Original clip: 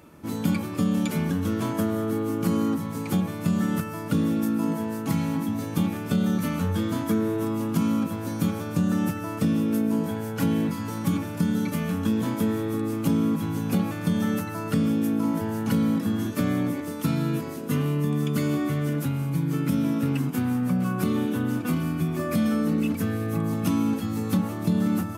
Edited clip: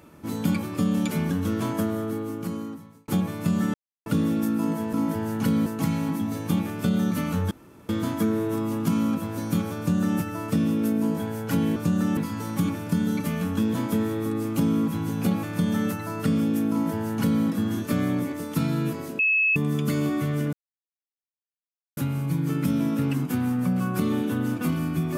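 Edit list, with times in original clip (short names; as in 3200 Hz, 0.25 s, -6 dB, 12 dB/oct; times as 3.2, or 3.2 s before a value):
1.74–3.08 fade out
3.74–4.06 mute
6.78 insert room tone 0.38 s
8.67–9.08 copy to 10.65
15.19–15.92 copy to 4.93
17.67–18.04 bleep 2590 Hz -18 dBFS
19.01 insert silence 1.44 s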